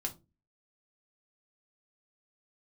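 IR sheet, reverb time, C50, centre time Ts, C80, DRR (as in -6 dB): 0.30 s, 15.5 dB, 8 ms, 24.0 dB, 2.0 dB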